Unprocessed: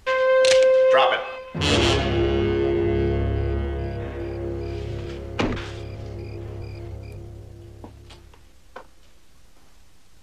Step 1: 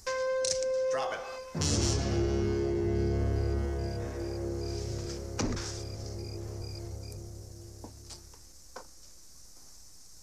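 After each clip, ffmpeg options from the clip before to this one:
ffmpeg -i in.wav -filter_complex "[0:a]highshelf=frequency=4200:width_type=q:width=3:gain=10.5,acrossover=split=260[link_01][link_02];[link_02]acompressor=threshold=-27dB:ratio=3[link_03];[link_01][link_03]amix=inputs=2:normalize=0,volume=-5.5dB" out.wav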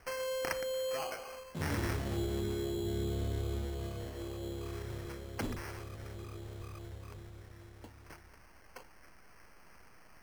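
ffmpeg -i in.wav -af "acrusher=samples=12:mix=1:aa=0.000001,volume=-6dB" out.wav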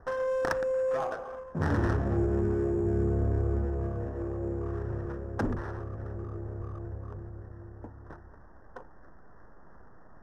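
ffmpeg -i in.wav -af "asuperstop=centerf=3100:order=20:qfactor=0.99,adynamicsmooth=sensitivity=6:basefreq=1300,volume=8dB" out.wav

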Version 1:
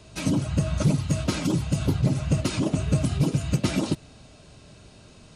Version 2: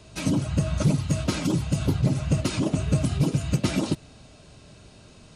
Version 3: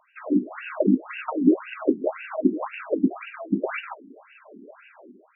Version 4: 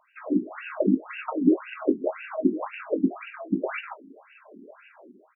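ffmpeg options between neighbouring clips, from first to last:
ffmpeg -i in.wav -af anull out.wav
ffmpeg -i in.wav -af "dynaudnorm=framelen=100:gausssize=7:maxgain=13dB,afftfilt=real='re*between(b*sr/1024,270*pow(2100/270,0.5+0.5*sin(2*PI*1.9*pts/sr))/1.41,270*pow(2100/270,0.5+0.5*sin(2*PI*1.9*pts/sr))*1.41)':imag='im*between(b*sr/1024,270*pow(2100/270,0.5+0.5*sin(2*PI*1.9*pts/sr))/1.41,270*pow(2100/270,0.5+0.5*sin(2*PI*1.9*pts/sr))*1.41)':win_size=1024:overlap=0.75" out.wav
ffmpeg -i in.wav -filter_complex "[0:a]asplit=2[link_01][link_02];[link_02]adelay=22,volume=-13dB[link_03];[link_01][link_03]amix=inputs=2:normalize=0,volume=-2dB" out.wav

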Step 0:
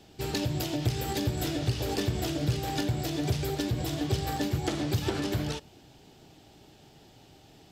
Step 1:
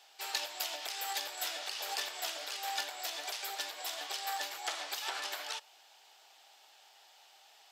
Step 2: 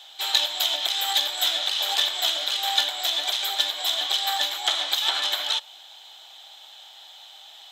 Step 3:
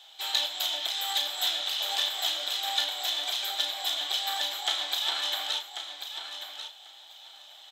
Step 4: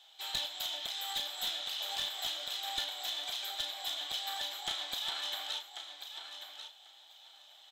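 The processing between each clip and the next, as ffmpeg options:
ffmpeg -i in.wav -af "highpass=frequency=770:width=0.5412,highpass=frequency=770:width=1.3066" out.wav
ffmpeg -i in.wav -af "superequalizer=7b=0.562:13b=3.55:14b=0.708:16b=0.708,volume=9dB" out.wav
ffmpeg -i in.wav -filter_complex "[0:a]asplit=2[link_01][link_02];[link_02]adelay=34,volume=-7dB[link_03];[link_01][link_03]amix=inputs=2:normalize=0,asplit=2[link_04][link_05];[link_05]aecho=0:1:1090|2180|3270:0.355|0.0603|0.0103[link_06];[link_04][link_06]amix=inputs=2:normalize=0,volume=-6.5dB" out.wav
ffmpeg -i in.wav -af "aeval=exprs='clip(val(0),-1,0.075)':channel_layout=same,volume=-7.5dB" out.wav

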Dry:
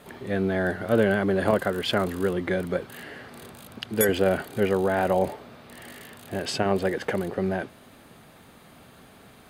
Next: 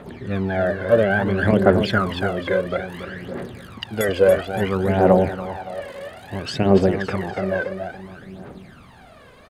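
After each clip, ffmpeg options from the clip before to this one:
ffmpeg -i in.wav -af "aemphasis=mode=reproduction:type=50fm,aecho=1:1:282|564|846|1128|1410:0.422|0.19|0.0854|0.0384|0.0173,aphaser=in_gain=1:out_gain=1:delay=2:decay=0.69:speed=0.59:type=triangular,volume=2dB" out.wav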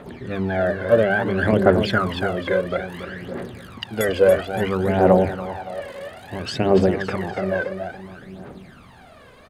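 ffmpeg -i in.wav -af "bandreject=frequency=50:width_type=h:width=6,bandreject=frequency=100:width_type=h:width=6,bandreject=frequency=150:width_type=h:width=6,bandreject=frequency=200:width_type=h:width=6" out.wav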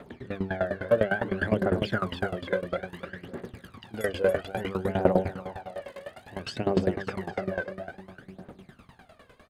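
ffmpeg -i in.wav -af "aeval=exprs='val(0)*pow(10,-18*if(lt(mod(9.9*n/s,1),2*abs(9.9)/1000),1-mod(9.9*n/s,1)/(2*abs(9.9)/1000),(mod(9.9*n/s,1)-2*abs(9.9)/1000)/(1-2*abs(9.9)/1000))/20)':channel_layout=same,volume=-2dB" out.wav

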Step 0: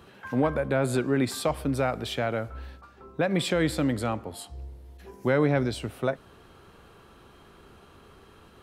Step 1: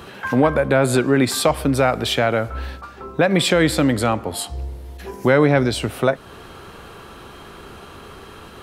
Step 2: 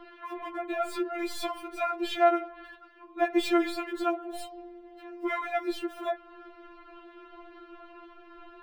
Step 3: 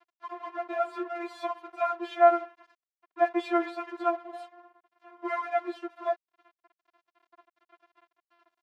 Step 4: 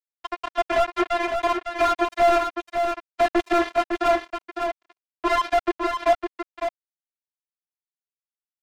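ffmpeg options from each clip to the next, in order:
ffmpeg -i in.wav -filter_complex "[0:a]lowshelf=frequency=440:gain=-3.5,asplit=2[link_01][link_02];[link_02]acompressor=threshold=-36dB:ratio=6,volume=1dB[link_03];[link_01][link_03]amix=inputs=2:normalize=0,volume=8.5dB" out.wav
ffmpeg -i in.wav -filter_complex "[0:a]highshelf=frequency=4000:gain=-9,acrossover=split=130|820|4100[link_01][link_02][link_03][link_04];[link_04]acrusher=bits=5:dc=4:mix=0:aa=0.000001[link_05];[link_01][link_02][link_03][link_05]amix=inputs=4:normalize=0,afftfilt=real='re*4*eq(mod(b,16),0)':imag='im*4*eq(mod(b,16),0)':win_size=2048:overlap=0.75,volume=-6.5dB" out.wav
ffmpeg -i in.wav -af "aeval=exprs='sgn(val(0))*max(abs(val(0))-0.00631,0)':channel_layout=same,bandpass=frequency=880:width_type=q:width=1.1:csg=0,volume=5dB" out.wav
ffmpeg -i in.wav -filter_complex "[0:a]acrusher=bits=4:mix=0:aa=0.5,asplit=2[link_01][link_02];[link_02]highpass=frequency=720:poles=1,volume=31dB,asoftclip=type=tanh:threshold=-9dB[link_03];[link_01][link_03]amix=inputs=2:normalize=0,lowpass=frequency=1300:poles=1,volume=-6dB,aecho=1:1:556:0.501,volume=-1dB" out.wav

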